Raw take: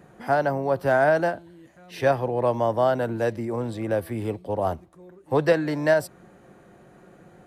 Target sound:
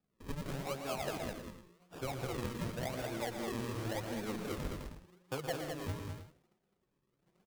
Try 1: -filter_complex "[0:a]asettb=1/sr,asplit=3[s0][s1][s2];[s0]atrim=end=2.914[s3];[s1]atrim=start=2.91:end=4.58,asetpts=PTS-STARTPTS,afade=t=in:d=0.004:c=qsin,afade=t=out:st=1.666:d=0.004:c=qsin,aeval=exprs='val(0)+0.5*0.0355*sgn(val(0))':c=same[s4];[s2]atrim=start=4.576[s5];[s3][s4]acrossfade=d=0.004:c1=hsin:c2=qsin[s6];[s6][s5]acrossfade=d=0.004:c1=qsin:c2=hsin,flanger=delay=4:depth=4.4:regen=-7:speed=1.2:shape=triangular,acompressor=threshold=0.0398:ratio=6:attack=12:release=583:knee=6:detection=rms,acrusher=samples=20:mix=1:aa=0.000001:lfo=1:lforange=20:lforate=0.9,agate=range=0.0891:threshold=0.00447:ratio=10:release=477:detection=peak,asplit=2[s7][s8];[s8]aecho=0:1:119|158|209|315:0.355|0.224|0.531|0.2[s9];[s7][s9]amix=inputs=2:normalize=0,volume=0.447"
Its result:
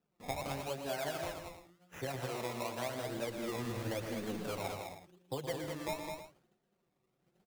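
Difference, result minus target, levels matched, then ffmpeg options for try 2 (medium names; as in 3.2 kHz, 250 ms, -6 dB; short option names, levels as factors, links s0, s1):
decimation with a swept rate: distortion -10 dB
-filter_complex "[0:a]asettb=1/sr,asplit=3[s0][s1][s2];[s0]atrim=end=2.914[s3];[s1]atrim=start=2.91:end=4.58,asetpts=PTS-STARTPTS,afade=t=in:d=0.004:c=qsin,afade=t=out:st=1.666:d=0.004:c=qsin,aeval=exprs='val(0)+0.5*0.0355*sgn(val(0))':c=same[s4];[s2]atrim=start=4.576[s5];[s3][s4]acrossfade=d=0.004:c1=hsin:c2=qsin[s6];[s6][s5]acrossfade=d=0.004:c1=qsin:c2=hsin,flanger=delay=4:depth=4.4:regen=-7:speed=1.2:shape=triangular,acompressor=threshold=0.0398:ratio=6:attack=12:release=583:knee=6:detection=rms,acrusher=samples=42:mix=1:aa=0.000001:lfo=1:lforange=42:lforate=0.9,agate=range=0.0891:threshold=0.00447:ratio=10:release=477:detection=peak,asplit=2[s7][s8];[s8]aecho=0:1:119|158|209|315:0.355|0.224|0.531|0.2[s9];[s7][s9]amix=inputs=2:normalize=0,volume=0.447"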